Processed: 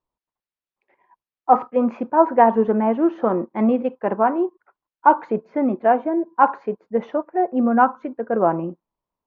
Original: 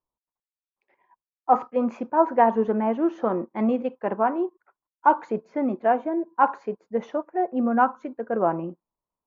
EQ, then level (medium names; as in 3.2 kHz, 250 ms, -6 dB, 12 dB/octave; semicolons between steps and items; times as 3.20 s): distance through air 190 m; +5.0 dB